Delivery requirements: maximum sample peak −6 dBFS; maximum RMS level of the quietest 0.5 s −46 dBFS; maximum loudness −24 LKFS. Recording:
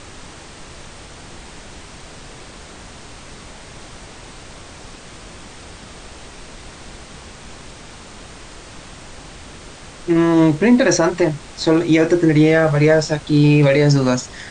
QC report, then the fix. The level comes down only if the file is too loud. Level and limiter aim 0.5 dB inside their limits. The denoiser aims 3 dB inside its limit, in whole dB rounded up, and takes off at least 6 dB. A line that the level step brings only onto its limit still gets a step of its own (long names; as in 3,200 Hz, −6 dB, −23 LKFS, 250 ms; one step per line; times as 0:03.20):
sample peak −4.0 dBFS: out of spec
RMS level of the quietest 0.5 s −38 dBFS: out of spec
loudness −15.0 LKFS: out of spec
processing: level −9.5 dB